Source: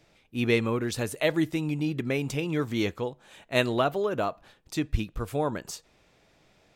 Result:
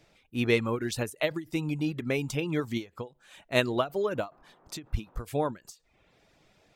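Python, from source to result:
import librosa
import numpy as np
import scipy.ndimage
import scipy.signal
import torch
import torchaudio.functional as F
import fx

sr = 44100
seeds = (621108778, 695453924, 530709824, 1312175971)

y = fx.dereverb_blind(x, sr, rt60_s=0.58)
y = fx.dmg_noise_band(y, sr, seeds[0], low_hz=140.0, high_hz=1200.0, level_db=-62.0, at=(3.94, 5.17), fade=0.02)
y = fx.end_taper(y, sr, db_per_s=250.0)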